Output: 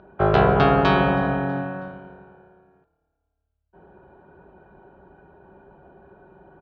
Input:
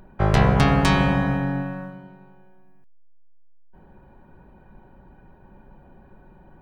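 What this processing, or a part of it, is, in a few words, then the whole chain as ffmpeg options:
frequency-shifting delay pedal into a guitar cabinet: -filter_complex "[0:a]asplit=4[a][b][c][d];[b]adelay=322,afreqshift=-36,volume=-23dB[e];[c]adelay=644,afreqshift=-72,volume=-29dB[f];[d]adelay=966,afreqshift=-108,volume=-35dB[g];[a][e][f][g]amix=inputs=4:normalize=0,highpass=76,equalizer=f=120:t=q:w=4:g=-7,equalizer=f=230:t=q:w=4:g=-6,equalizer=f=400:t=q:w=4:g=9,equalizer=f=680:t=q:w=4:g=7,equalizer=f=1.4k:t=q:w=4:g=7,equalizer=f=2k:t=q:w=4:g=-7,lowpass=f=3.8k:w=0.5412,lowpass=f=3.8k:w=1.3066"

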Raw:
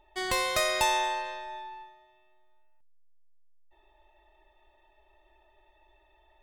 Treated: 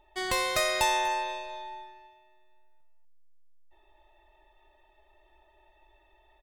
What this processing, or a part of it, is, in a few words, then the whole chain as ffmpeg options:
ducked delay: -filter_complex "[0:a]asplit=3[a][b][c];[b]adelay=243,volume=-7dB[d];[c]apad=whole_len=293943[e];[d][e]sidechaincompress=threshold=-34dB:ratio=8:attack=16:release=454[f];[a][f]amix=inputs=2:normalize=0"

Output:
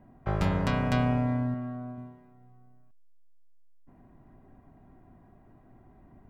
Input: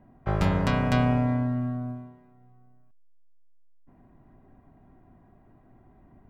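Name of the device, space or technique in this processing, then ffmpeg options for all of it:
parallel compression: -filter_complex "[0:a]asplit=2[a][b];[b]acompressor=threshold=-35dB:ratio=6,volume=-4dB[c];[a][c]amix=inputs=2:normalize=0,asettb=1/sr,asplit=3[d][e][f];[d]atrim=end=1.544[g];[e]atrim=start=1.54:end=1.98,asetpts=PTS-STARTPTS,afade=t=in:d=0.004:c=qsin,afade=t=out:st=0.436:d=0.004:c=qsin,bass=f=250:g=-7,treble=f=4k:g=-6[h];[f]atrim=start=1.976[i];[g][h]acrossfade=d=0.004:c1=hsin:c2=qsin[j];[j][i]acrossfade=d=0.004:c1=qsin:c2=hsin,volume=-4dB"

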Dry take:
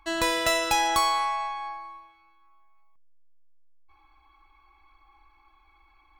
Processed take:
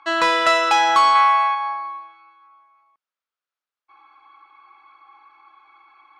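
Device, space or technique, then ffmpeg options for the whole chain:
intercom: -filter_complex "[0:a]highpass=390,lowpass=4.3k,equalizer=f=1.3k:t=o:w=0.48:g=9,asoftclip=type=tanh:threshold=-14.5dB,asettb=1/sr,asplit=3[a][b][c];[a]atrim=end=1.154[d];[b]atrim=start=1.15:end=1.55,asetpts=PTS-STARTPTS,afade=t=in:d=0.004:c=qsin,afade=t=out:st=0.396:d=0.004:c=qsin,equalizer=f=2k:t=o:w=1.6:g=5[e];[c]atrim=start=1.546[f];[d][e]acrossfade=d=0.004:c1=hsin:c2=qsin[g];[g][f]acrossfade=d=0.004:c1=qsin:c2=hsin,volume=7.5dB"

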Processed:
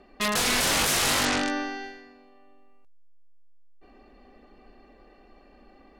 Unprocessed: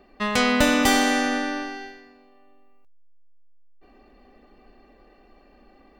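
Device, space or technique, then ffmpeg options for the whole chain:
overflowing digital effects unit: -filter_complex "[0:a]aeval=exprs='(mod(7.94*val(0)+1,2)-1)/7.94':c=same,lowpass=12k,asettb=1/sr,asplit=3[a][b][c];[a]atrim=end=1.254[d];[b]atrim=start=1.25:end=1.84,asetpts=PTS-STARTPTS,afade=t=in:d=0.004:c=qsin,afade=t=out:st=0.586:d=0.004:c=qsin,lowpass=f=7.8k:w=0.5412,lowpass=f=7.8k:w=1.3066[e];[c]atrim=start=1.836[f];[d][e]acrossfade=d=0.004:c1=hsin:c2=qsin[g];[g][f]acrossfade=d=0.004:c1=qsin:c2=hsin"

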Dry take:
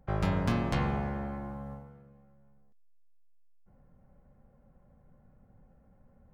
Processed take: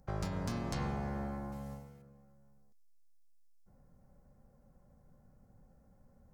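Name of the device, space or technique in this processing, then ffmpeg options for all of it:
over-bright horn tweeter: -filter_complex "[0:a]asettb=1/sr,asplit=3[a][b][c];[a]atrim=end=1.524[d];[b]atrim=start=1.52:end=2.02,asetpts=PTS-STARTPTS,afade=t=in:d=0.004:c=qsin,afade=t=out:st=0.496:d=0.004:c=qsin,highshelf=f=1.9k:t=q:w=1.5:g=8[e];[c]atrim=start=2.016[f];[d][e]acrossfade=d=0.004:c1=hsin:c2=qsin[g];[g][f]acrossfade=d=0.004:c1=qsin:c2=hsin,highshelf=f=4k:t=q:w=1.5:g=8.5,alimiter=limit=-24dB:level=0:latency=1:release=268,volume=-2.5dB"

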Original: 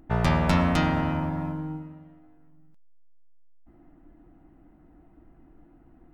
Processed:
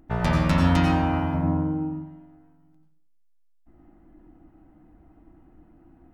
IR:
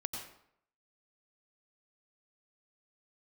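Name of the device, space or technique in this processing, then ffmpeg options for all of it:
bathroom: -filter_complex "[0:a]asettb=1/sr,asplit=3[a][b][c];[a]atrim=end=1.344[d];[b]atrim=start=1.34:end=1.93,asetpts=PTS-STARTPTS,afade=t=in:d=0.004:c=qsin,afade=t=out:st=0.586:d=0.004:c=qsin,tiltshelf=f=1.4k:g=7.5[e];[c]atrim=start=1.926[f];[d][e]acrossfade=d=0.004:c1=hsin:c2=qsin[g];[g][f]acrossfade=d=0.004:c1=qsin:c2=hsin[h];[1:a]atrim=start_sample=2205[i];[h][i]afir=irnorm=-1:irlink=0"

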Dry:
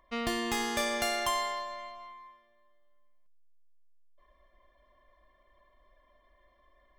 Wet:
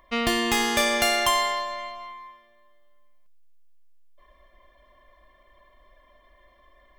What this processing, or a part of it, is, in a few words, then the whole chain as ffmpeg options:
presence and air boost: -af "equalizer=f=2.7k:t=o:w=0.95:g=3.5,highshelf=f=12k:g=4.5,volume=7.5dB"

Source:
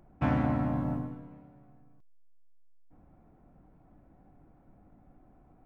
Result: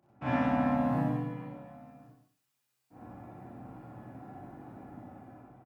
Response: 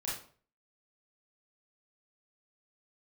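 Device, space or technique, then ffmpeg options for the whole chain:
far laptop microphone: -filter_complex "[0:a]highpass=78,asettb=1/sr,asplit=3[a][b][c];[a]atrim=end=0.854[d];[b]atrim=start=0.85:end=1.44,asetpts=PTS-STARTPTS,afade=t=in:d=0.004:c=qsin,afade=t=out:st=0.586:d=0.004:c=qsin,aecho=1:1:6.3:0.71,atrim=end_sample=26019[e];[c]atrim=start=1.436[f];[d][e]acrossfade=d=0.004:c1=hsin:c2=qsin[g];[g][f]acrossfade=d=0.004:c1=qsin:c2=hsin,aecho=1:1:61.22|189.5:1|0.282[h];[1:a]atrim=start_sample=2205[i];[h][i]afir=irnorm=-1:irlink=0,highpass=f=150:p=1,dynaudnorm=f=400:g=5:m=15dB,volume=-4.5dB"

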